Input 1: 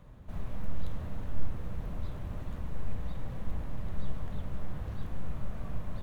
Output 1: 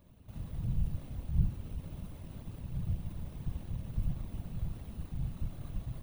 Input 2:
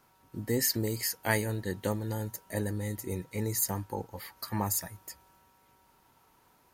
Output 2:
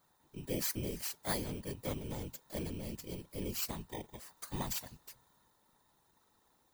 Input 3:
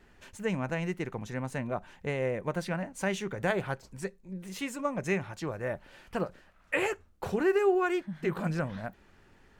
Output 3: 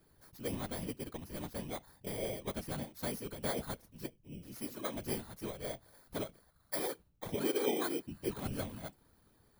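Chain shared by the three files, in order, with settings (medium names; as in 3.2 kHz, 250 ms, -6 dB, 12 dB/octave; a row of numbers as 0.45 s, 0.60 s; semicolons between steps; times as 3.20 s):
bit-reversed sample order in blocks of 16 samples; whisper effect; trim -7.5 dB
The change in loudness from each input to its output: +1.5 LU, -7.5 LU, -7.0 LU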